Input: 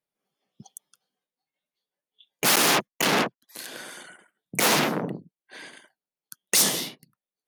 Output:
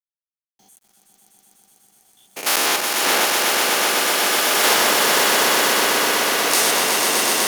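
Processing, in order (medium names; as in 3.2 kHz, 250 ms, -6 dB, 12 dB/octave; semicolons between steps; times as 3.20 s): spectrogram pixelated in time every 100 ms; high-pass 370 Hz 12 dB/octave; echo with a slow build-up 124 ms, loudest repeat 5, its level -5 dB; word length cut 10-bit, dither none; swelling reverb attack 2080 ms, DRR -1.5 dB; trim +3 dB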